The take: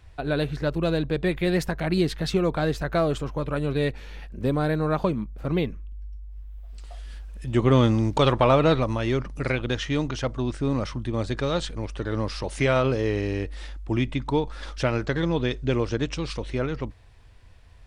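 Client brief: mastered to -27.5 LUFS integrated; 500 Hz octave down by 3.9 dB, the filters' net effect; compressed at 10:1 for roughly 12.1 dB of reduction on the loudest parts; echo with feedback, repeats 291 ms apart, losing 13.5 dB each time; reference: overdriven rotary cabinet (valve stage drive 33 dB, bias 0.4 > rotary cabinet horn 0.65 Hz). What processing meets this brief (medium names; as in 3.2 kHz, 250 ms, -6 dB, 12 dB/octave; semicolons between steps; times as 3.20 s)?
peaking EQ 500 Hz -5 dB; compression 10:1, threshold -28 dBFS; feedback delay 291 ms, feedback 21%, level -13.5 dB; valve stage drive 33 dB, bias 0.4; rotary cabinet horn 0.65 Hz; trim +13.5 dB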